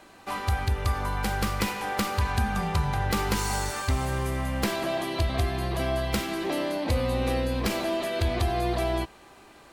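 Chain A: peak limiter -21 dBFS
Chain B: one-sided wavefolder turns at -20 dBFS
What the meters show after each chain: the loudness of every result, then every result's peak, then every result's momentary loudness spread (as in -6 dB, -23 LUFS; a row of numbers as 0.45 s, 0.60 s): -30.5 LUFS, -28.5 LUFS; -21.0 dBFS, -11.5 dBFS; 1 LU, 2 LU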